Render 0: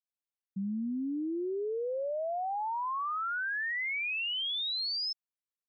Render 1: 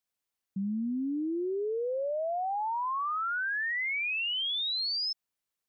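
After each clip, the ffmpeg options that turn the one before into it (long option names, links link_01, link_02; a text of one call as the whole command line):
ffmpeg -i in.wav -af "alimiter=level_in=12dB:limit=-24dB:level=0:latency=1,volume=-12dB,volume=7.5dB" out.wav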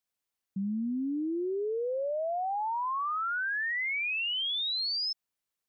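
ffmpeg -i in.wav -af anull out.wav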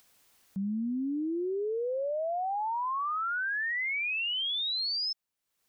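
ffmpeg -i in.wav -af "acompressor=mode=upward:threshold=-45dB:ratio=2.5" out.wav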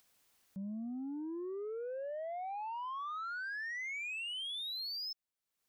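ffmpeg -i in.wav -af "asoftclip=type=tanh:threshold=-29.5dB,volume=-7dB" out.wav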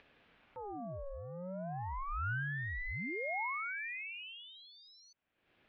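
ffmpeg -i in.wav -af "highpass=210,equalizer=frequency=320:width_type=q:width=4:gain=-5,equalizer=frequency=670:width_type=q:width=4:gain=5,equalizer=frequency=1500:width_type=q:width=4:gain=4,lowpass=frequency=2300:width=0.5412,lowpass=frequency=2300:width=1.3066,acompressor=mode=upward:threshold=-55dB:ratio=2.5,aeval=exprs='val(0)*sin(2*PI*590*n/s+590*0.7/0.36*sin(2*PI*0.36*n/s))':channel_layout=same,volume=3.5dB" out.wav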